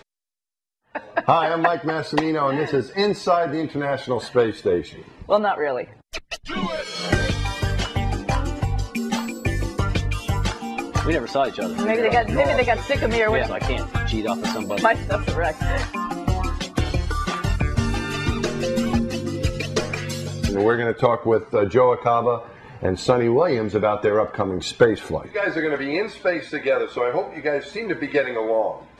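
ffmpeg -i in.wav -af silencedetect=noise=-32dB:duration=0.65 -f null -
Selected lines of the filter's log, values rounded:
silence_start: 0.00
silence_end: 0.95 | silence_duration: 0.95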